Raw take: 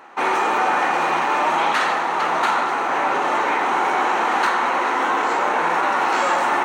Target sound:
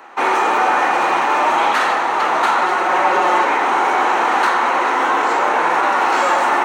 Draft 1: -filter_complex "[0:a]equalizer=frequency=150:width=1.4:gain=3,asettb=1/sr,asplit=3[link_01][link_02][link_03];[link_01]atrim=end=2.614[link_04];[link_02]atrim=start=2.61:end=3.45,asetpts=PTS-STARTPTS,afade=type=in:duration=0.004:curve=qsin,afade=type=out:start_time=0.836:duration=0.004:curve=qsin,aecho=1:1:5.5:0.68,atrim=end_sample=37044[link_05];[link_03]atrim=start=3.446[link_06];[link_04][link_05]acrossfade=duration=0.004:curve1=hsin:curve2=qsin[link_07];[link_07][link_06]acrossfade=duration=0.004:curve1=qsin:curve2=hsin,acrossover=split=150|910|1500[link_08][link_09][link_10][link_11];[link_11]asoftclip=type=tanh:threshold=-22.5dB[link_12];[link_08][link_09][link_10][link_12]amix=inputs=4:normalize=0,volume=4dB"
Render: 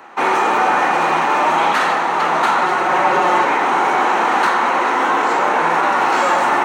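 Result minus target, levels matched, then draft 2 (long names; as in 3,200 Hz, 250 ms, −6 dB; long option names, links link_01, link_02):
125 Hz band +8.5 dB
-filter_complex "[0:a]equalizer=frequency=150:width=1.4:gain=-7.5,asettb=1/sr,asplit=3[link_01][link_02][link_03];[link_01]atrim=end=2.614[link_04];[link_02]atrim=start=2.61:end=3.45,asetpts=PTS-STARTPTS,afade=type=in:duration=0.004:curve=qsin,afade=type=out:start_time=0.836:duration=0.004:curve=qsin,aecho=1:1:5.5:0.68,atrim=end_sample=37044[link_05];[link_03]atrim=start=3.446[link_06];[link_04][link_05]acrossfade=duration=0.004:curve1=hsin:curve2=qsin[link_07];[link_07][link_06]acrossfade=duration=0.004:curve1=qsin:curve2=hsin,acrossover=split=150|910|1500[link_08][link_09][link_10][link_11];[link_11]asoftclip=type=tanh:threshold=-22.5dB[link_12];[link_08][link_09][link_10][link_12]amix=inputs=4:normalize=0,volume=4dB"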